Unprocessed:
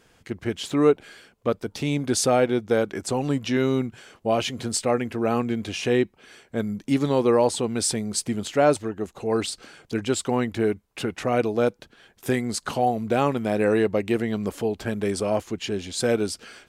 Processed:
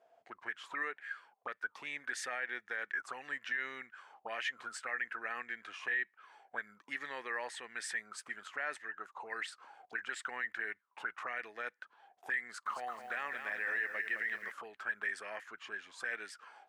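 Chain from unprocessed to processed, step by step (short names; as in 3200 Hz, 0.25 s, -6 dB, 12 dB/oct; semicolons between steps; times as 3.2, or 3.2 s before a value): dynamic EQ 4400 Hz, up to -4 dB, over -48 dBFS, Q 1.4; auto-wah 660–1800 Hz, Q 13, up, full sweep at -22 dBFS; limiter -38 dBFS, peak gain reduction 9.5 dB; tilt +2.5 dB/oct; 12.44–14.52 lo-fi delay 0.216 s, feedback 35%, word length 12-bit, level -7 dB; gain +9.5 dB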